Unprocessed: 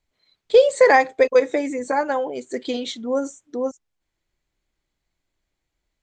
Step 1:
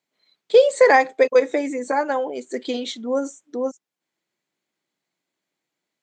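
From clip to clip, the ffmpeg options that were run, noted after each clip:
-af "highpass=f=170:w=0.5412,highpass=f=170:w=1.3066"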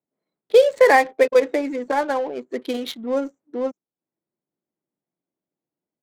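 -af "adynamicsmooth=sensitivity=6.5:basefreq=690"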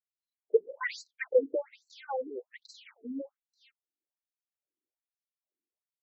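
-af "afftfilt=real='re*between(b*sr/1024,300*pow(5700/300,0.5+0.5*sin(2*PI*1.2*pts/sr))/1.41,300*pow(5700/300,0.5+0.5*sin(2*PI*1.2*pts/sr))*1.41)':imag='im*between(b*sr/1024,300*pow(5700/300,0.5+0.5*sin(2*PI*1.2*pts/sr))/1.41,300*pow(5700/300,0.5+0.5*sin(2*PI*1.2*pts/sr))*1.41)':win_size=1024:overlap=0.75,volume=-7.5dB"

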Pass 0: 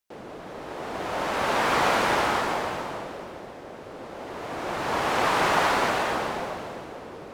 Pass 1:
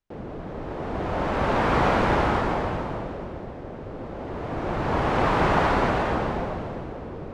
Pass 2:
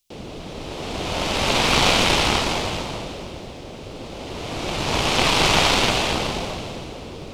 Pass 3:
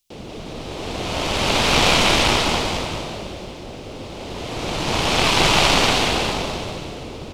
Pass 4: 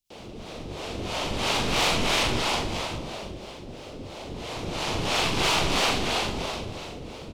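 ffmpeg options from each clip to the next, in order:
-af "aemphasis=mode=reproduction:type=riaa"
-filter_complex "[0:a]aeval=exprs='0.355*(cos(1*acos(clip(val(0)/0.355,-1,1)))-cos(1*PI/2))+0.178*(cos(2*acos(clip(val(0)/0.355,-1,1)))-cos(2*PI/2))':c=same,acrossover=split=750[a][b];[b]aexciter=amount=6.2:drive=7.8:freq=2.5k[c];[a][c]amix=inputs=2:normalize=0"
-af "aecho=1:1:189:0.668"
-filter_complex "[0:a]acrossover=split=440[a][b];[a]aeval=exprs='val(0)*(1-0.7/2+0.7/2*cos(2*PI*3*n/s))':c=same[c];[b]aeval=exprs='val(0)*(1-0.7/2-0.7/2*cos(2*PI*3*n/s))':c=same[d];[c][d]amix=inputs=2:normalize=0,asoftclip=type=tanh:threshold=-13.5dB,asplit=2[e][f];[f]adelay=42,volume=-6dB[g];[e][g]amix=inputs=2:normalize=0,volume=-3.5dB"

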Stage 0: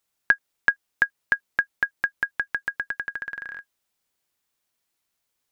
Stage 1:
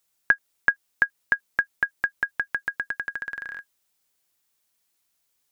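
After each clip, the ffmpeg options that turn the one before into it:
-filter_complex "[0:a]acrossover=split=2500[a][b];[b]acompressor=threshold=-46dB:ratio=4:attack=1:release=60[c];[a][c]amix=inputs=2:normalize=0,highshelf=f=4.3k:g=6.5"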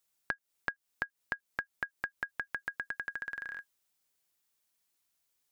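-af "acompressor=threshold=-27dB:ratio=6,volume=-5.5dB"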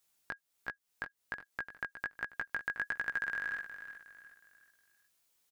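-af "alimiter=limit=-24dB:level=0:latency=1:release=423,flanger=delay=16:depth=4:speed=1.3,aecho=1:1:364|728|1092|1456:0.282|0.107|0.0407|0.0155,volume=7dB"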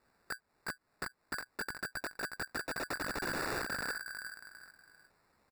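-af "alimiter=level_in=6dB:limit=-24dB:level=0:latency=1:release=97,volume=-6dB,aresample=11025,aeval=exprs='(mod(141*val(0)+1,2)-1)/141':c=same,aresample=44100,acrusher=samples=14:mix=1:aa=0.000001,volume=11.5dB"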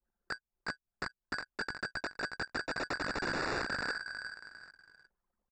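-af "anlmdn=0.00001,acrusher=bits=5:mode=log:mix=0:aa=0.000001,aresample=16000,aresample=44100,volume=2dB"

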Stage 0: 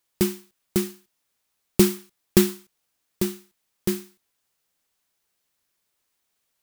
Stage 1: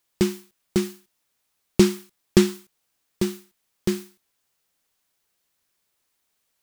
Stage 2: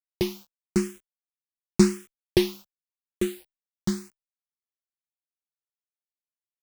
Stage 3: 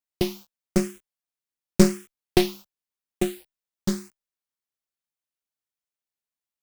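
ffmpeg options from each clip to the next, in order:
-filter_complex "[0:a]acrossover=split=8000[a][b];[b]acompressor=threshold=-42dB:ratio=4:attack=1:release=60[c];[a][c]amix=inputs=2:normalize=0,volume=1.5dB"
-filter_complex "[0:a]acrusher=bits=7:mix=0:aa=0.000001,asplit=2[a][b];[b]afreqshift=0.91[c];[a][c]amix=inputs=2:normalize=1"
-af "acrusher=bits=5:mode=log:mix=0:aa=0.000001,aeval=exprs='0.708*(cos(1*acos(clip(val(0)/0.708,-1,1)))-cos(1*PI/2))+0.126*(cos(4*acos(clip(val(0)/0.708,-1,1)))-cos(4*PI/2))+0.0224*(cos(8*acos(clip(val(0)/0.708,-1,1)))-cos(8*PI/2))':c=same,volume=1dB"

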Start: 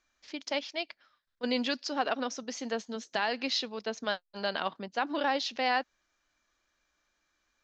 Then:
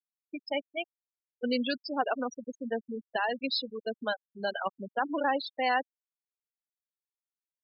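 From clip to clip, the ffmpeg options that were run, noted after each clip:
-af "afftfilt=real='re*gte(hypot(re,im),0.0631)':imag='im*gte(hypot(re,im),0.0631)':win_size=1024:overlap=0.75,volume=1.5dB"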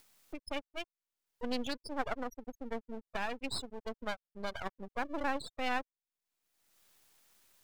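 -af "aeval=exprs='max(val(0),0)':c=same,acompressor=mode=upward:threshold=-33dB:ratio=2.5,volume=-3.5dB"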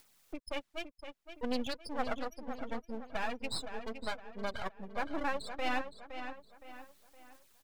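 -filter_complex "[0:a]flanger=delay=0:depth=6.5:regen=-31:speed=0.68:shape=sinusoidal,asplit=2[a][b];[b]adelay=515,lowpass=f=4.8k:p=1,volume=-9dB,asplit=2[c][d];[d]adelay=515,lowpass=f=4.8k:p=1,volume=0.41,asplit=2[e][f];[f]adelay=515,lowpass=f=4.8k:p=1,volume=0.41,asplit=2[g][h];[h]adelay=515,lowpass=f=4.8k:p=1,volume=0.41,asplit=2[i][j];[j]adelay=515,lowpass=f=4.8k:p=1,volume=0.41[k];[a][c][e][g][i][k]amix=inputs=6:normalize=0,volume=3.5dB"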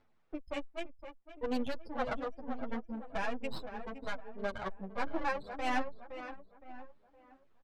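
-filter_complex "[0:a]adynamicsmooth=sensitivity=5:basefreq=1.4k,asplit=2[a][b];[b]adelay=8.7,afreqshift=-1.2[c];[a][c]amix=inputs=2:normalize=1,volume=4.5dB"

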